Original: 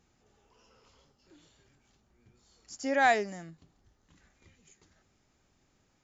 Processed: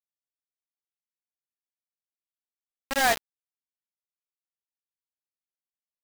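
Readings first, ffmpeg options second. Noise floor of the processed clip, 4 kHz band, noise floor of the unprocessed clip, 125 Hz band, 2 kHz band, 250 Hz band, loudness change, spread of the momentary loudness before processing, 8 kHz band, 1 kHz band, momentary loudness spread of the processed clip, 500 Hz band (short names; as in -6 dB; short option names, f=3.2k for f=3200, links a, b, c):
under -85 dBFS, +9.5 dB, -72 dBFS, -3.0 dB, +1.5 dB, -3.5 dB, +2.5 dB, 17 LU, n/a, -0.5 dB, 7 LU, -1.5 dB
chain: -af "afreqshift=-14,acrusher=bits=3:mix=0:aa=0.000001"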